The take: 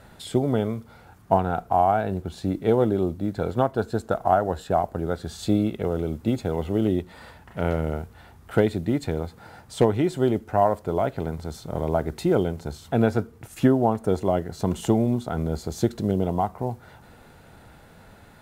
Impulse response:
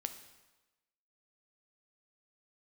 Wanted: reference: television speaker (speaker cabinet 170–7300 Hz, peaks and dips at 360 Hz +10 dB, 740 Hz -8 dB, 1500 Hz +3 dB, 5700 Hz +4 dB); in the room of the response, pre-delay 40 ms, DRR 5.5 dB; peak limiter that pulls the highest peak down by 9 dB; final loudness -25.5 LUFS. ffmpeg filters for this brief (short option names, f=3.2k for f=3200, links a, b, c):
-filter_complex "[0:a]alimiter=limit=-15dB:level=0:latency=1,asplit=2[a][b];[1:a]atrim=start_sample=2205,adelay=40[c];[b][c]afir=irnorm=-1:irlink=0,volume=-4.5dB[d];[a][d]amix=inputs=2:normalize=0,highpass=f=170:w=0.5412,highpass=f=170:w=1.3066,equalizer=f=360:t=q:w=4:g=10,equalizer=f=740:t=q:w=4:g=-8,equalizer=f=1.5k:t=q:w=4:g=3,equalizer=f=5.7k:t=q:w=4:g=4,lowpass=f=7.3k:w=0.5412,lowpass=f=7.3k:w=1.3066,volume=-0.5dB"